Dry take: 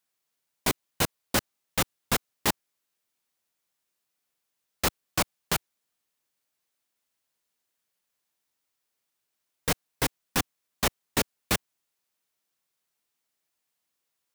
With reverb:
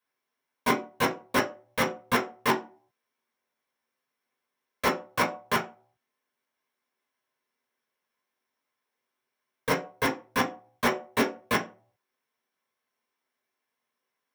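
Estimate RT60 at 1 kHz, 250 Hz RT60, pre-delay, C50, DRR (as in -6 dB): 0.40 s, 0.35 s, 3 ms, 11.5 dB, -3.0 dB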